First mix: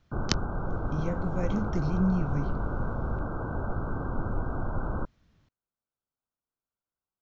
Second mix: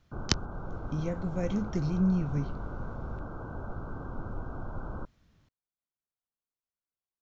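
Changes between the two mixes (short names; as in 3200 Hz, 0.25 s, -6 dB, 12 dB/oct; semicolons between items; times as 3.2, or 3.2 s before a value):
background -7.0 dB; master: add bell 11000 Hz +7.5 dB 0.8 oct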